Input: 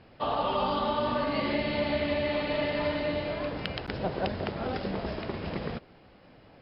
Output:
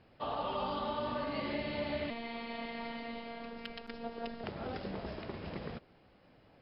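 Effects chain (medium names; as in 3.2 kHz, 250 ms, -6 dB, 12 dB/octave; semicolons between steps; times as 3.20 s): 2.10–4.44 s: robot voice 232 Hz; trim -8 dB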